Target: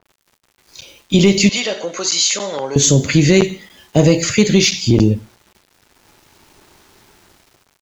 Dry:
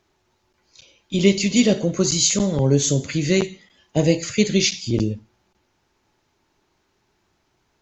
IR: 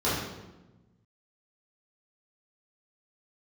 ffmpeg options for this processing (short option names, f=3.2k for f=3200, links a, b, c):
-filter_complex "[0:a]asplit=2[a][b];[b]acontrast=63,volume=2.5dB[c];[a][c]amix=inputs=2:normalize=0,alimiter=limit=-2.5dB:level=0:latency=1:release=152,dynaudnorm=f=330:g=5:m=6.5dB,acrusher=bits=7:mix=0:aa=0.000001,asettb=1/sr,asplit=3[d][e][f];[d]atrim=end=1.494[g];[e]atrim=start=1.49:end=2.76,asetpts=PTS-STARTPTS,afade=t=in:d=0.004:c=qsin,afade=t=out:st=1.266:d=0.004:c=qsin,highpass=760,lowpass=6.1k[h];[f]atrim=start=2.756[i];[g][h]acrossfade=d=0.004:c1=hsin:c2=qsin[j];[j][i]acrossfade=d=0.004:c1=qsin:c2=hsin,asplit=2[k][l];[l]adelay=93.29,volume=-27dB,highshelf=f=4k:g=-2.1[m];[k][m]amix=inputs=2:normalize=0,adynamicequalizer=threshold=0.0316:dfrequency=3300:dqfactor=0.7:tfrequency=3300:tqfactor=0.7:attack=5:release=100:ratio=0.375:range=1.5:mode=cutabove:tftype=highshelf,volume=-1dB"